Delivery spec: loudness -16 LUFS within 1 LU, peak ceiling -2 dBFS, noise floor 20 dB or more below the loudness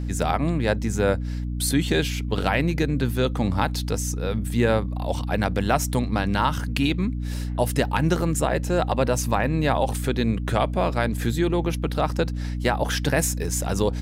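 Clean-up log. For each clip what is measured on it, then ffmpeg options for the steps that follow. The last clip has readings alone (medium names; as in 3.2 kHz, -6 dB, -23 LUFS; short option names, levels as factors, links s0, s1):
hum 60 Hz; highest harmonic 300 Hz; hum level -25 dBFS; loudness -24.0 LUFS; peak level -7.0 dBFS; loudness target -16.0 LUFS
-> -af "bandreject=f=60:t=h:w=4,bandreject=f=120:t=h:w=4,bandreject=f=180:t=h:w=4,bandreject=f=240:t=h:w=4,bandreject=f=300:t=h:w=4"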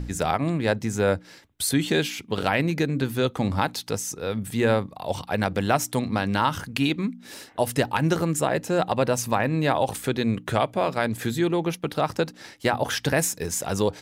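hum not found; loudness -25.0 LUFS; peak level -6.5 dBFS; loudness target -16.0 LUFS
-> -af "volume=2.82,alimiter=limit=0.794:level=0:latency=1"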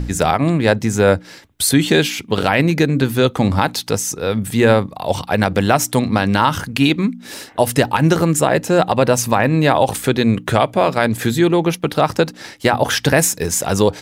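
loudness -16.5 LUFS; peak level -2.0 dBFS; noise floor -42 dBFS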